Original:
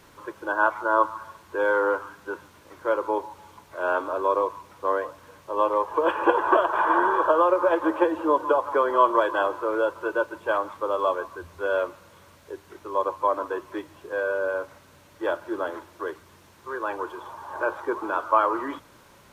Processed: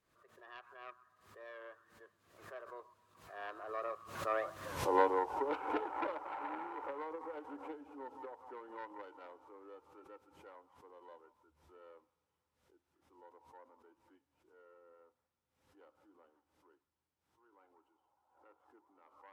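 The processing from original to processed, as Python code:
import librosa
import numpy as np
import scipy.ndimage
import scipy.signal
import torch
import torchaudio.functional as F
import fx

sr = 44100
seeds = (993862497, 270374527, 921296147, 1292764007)

y = fx.self_delay(x, sr, depth_ms=0.17)
y = fx.doppler_pass(y, sr, speed_mps=41, closest_m=2.8, pass_at_s=4.73)
y = fx.pre_swell(y, sr, db_per_s=87.0)
y = y * 10.0 ** (5.5 / 20.0)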